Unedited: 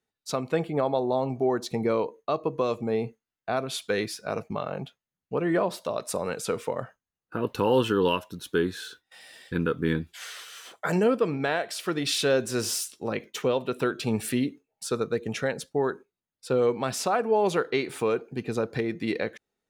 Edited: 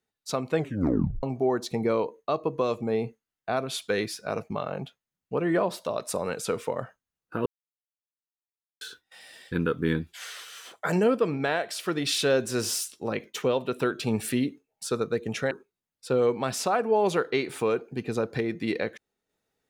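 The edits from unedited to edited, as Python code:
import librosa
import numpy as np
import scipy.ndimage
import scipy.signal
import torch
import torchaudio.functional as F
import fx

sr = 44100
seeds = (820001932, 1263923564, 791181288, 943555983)

y = fx.edit(x, sr, fx.tape_stop(start_s=0.56, length_s=0.67),
    fx.silence(start_s=7.46, length_s=1.35),
    fx.cut(start_s=15.51, length_s=0.4), tone=tone)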